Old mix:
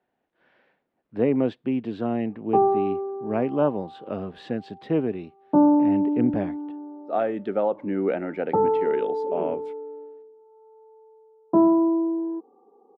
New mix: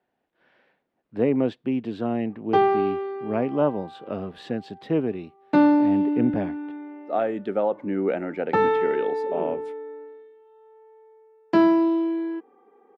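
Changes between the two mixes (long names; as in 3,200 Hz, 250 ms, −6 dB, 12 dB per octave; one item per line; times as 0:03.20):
speech: add high-shelf EQ 6,900 Hz +10 dB
background: remove Butterworth low-pass 1,100 Hz 48 dB per octave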